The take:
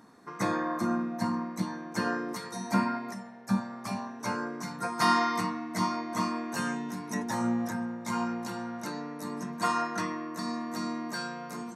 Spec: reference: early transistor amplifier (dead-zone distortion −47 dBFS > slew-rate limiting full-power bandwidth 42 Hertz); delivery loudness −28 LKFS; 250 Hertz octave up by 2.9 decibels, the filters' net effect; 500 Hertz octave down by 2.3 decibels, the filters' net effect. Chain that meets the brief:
parametric band 250 Hz +4.5 dB
parametric band 500 Hz −5.5 dB
dead-zone distortion −47 dBFS
slew-rate limiting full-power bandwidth 42 Hz
level +4.5 dB

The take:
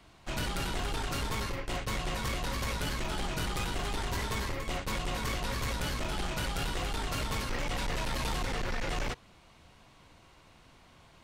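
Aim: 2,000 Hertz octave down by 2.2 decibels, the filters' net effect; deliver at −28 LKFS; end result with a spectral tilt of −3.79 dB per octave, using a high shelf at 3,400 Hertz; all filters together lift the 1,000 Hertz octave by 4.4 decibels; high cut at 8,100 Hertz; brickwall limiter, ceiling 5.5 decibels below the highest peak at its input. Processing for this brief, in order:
low-pass filter 8,100 Hz
parametric band 1,000 Hz +6.5 dB
parametric band 2,000 Hz −6.5 dB
high-shelf EQ 3,400 Hz +4.5 dB
level +8 dB
brickwall limiter −20 dBFS

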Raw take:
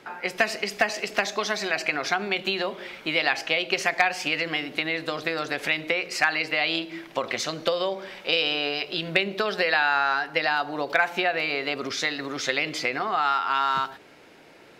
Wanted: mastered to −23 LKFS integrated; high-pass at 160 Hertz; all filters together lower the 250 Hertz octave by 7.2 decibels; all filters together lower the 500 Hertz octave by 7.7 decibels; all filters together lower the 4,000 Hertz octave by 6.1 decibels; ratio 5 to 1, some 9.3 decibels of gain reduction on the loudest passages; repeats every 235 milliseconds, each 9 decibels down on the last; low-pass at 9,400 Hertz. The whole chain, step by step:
high-pass filter 160 Hz
low-pass filter 9,400 Hz
parametric band 250 Hz −5.5 dB
parametric band 500 Hz −8.5 dB
parametric band 4,000 Hz −8.5 dB
downward compressor 5 to 1, threshold −30 dBFS
repeating echo 235 ms, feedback 35%, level −9 dB
level +10.5 dB

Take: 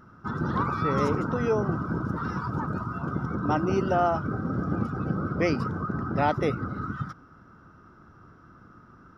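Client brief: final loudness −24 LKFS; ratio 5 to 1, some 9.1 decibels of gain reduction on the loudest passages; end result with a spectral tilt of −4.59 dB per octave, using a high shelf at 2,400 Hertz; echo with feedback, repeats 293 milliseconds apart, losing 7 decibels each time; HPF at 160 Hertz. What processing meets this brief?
high-pass filter 160 Hz
high-shelf EQ 2,400 Hz −6 dB
downward compressor 5 to 1, threshold −31 dBFS
repeating echo 293 ms, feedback 45%, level −7 dB
level +10.5 dB

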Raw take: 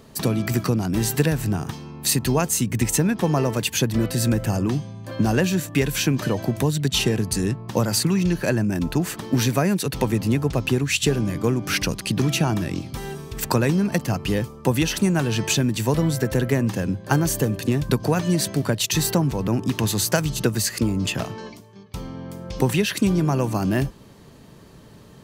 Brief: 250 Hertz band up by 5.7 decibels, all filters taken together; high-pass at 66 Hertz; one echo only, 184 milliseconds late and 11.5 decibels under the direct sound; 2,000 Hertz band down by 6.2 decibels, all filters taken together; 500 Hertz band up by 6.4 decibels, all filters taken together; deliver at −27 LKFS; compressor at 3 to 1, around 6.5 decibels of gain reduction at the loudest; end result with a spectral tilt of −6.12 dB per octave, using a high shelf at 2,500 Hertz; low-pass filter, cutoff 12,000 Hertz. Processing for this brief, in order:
high-pass filter 66 Hz
low-pass filter 12,000 Hz
parametric band 250 Hz +6 dB
parametric band 500 Hz +6.5 dB
parametric band 2,000 Hz −7 dB
high-shelf EQ 2,500 Hz −4 dB
downward compressor 3 to 1, threshold −19 dBFS
single-tap delay 184 ms −11.5 dB
level −3.5 dB

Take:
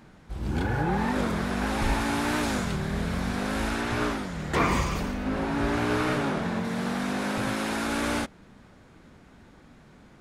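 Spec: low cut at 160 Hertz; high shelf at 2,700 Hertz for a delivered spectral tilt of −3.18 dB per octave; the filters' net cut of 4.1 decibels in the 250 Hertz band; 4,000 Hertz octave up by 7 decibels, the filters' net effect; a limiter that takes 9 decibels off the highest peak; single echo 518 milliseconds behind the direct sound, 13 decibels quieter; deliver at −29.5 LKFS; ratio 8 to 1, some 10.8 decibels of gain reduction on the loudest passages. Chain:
high-pass filter 160 Hz
parametric band 250 Hz −4 dB
high-shelf EQ 2,700 Hz +7 dB
parametric band 4,000 Hz +3 dB
downward compressor 8 to 1, threshold −30 dBFS
brickwall limiter −28.5 dBFS
single-tap delay 518 ms −13 dB
level +7 dB

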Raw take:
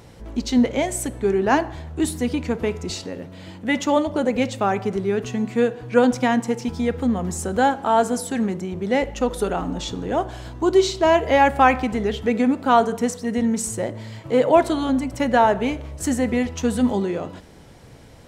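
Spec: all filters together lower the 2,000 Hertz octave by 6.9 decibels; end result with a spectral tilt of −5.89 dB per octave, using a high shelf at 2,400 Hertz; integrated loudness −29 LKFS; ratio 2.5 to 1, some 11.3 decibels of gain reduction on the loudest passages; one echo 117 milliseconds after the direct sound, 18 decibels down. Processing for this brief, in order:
parametric band 2,000 Hz −6.5 dB
high-shelf EQ 2,400 Hz −5 dB
downward compressor 2.5 to 1, threshold −29 dBFS
single-tap delay 117 ms −18 dB
level +1.5 dB

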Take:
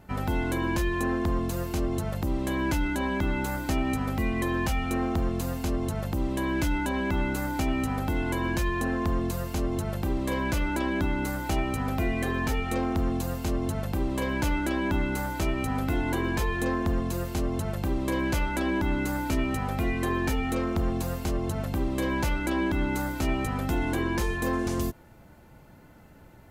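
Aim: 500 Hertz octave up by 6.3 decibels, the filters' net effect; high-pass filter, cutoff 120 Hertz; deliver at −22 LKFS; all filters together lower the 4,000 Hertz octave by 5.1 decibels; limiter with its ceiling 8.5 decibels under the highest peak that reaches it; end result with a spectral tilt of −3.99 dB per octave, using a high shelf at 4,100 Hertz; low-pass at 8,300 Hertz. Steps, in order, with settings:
high-pass filter 120 Hz
low-pass filter 8,300 Hz
parametric band 500 Hz +9 dB
parametric band 4,000 Hz −3.5 dB
high-shelf EQ 4,100 Hz −6.5 dB
level +8 dB
brickwall limiter −13.5 dBFS

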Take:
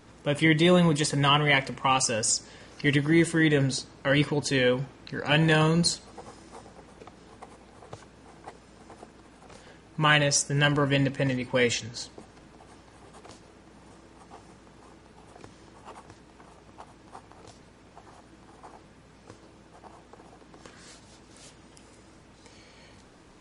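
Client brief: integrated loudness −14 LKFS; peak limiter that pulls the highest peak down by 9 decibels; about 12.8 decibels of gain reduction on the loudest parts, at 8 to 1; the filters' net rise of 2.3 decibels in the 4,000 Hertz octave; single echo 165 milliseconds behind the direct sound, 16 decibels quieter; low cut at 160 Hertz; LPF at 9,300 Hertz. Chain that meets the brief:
high-pass filter 160 Hz
low-pass filter 9,300 Hz
parametric band 4,000 Hz +3.5 dB
downward compressor 8 to 1, threshold −30 dBFS
brickwall limiter −25.5 dBFS
single-tap delay 165 ms −16 dB
level +24 dB

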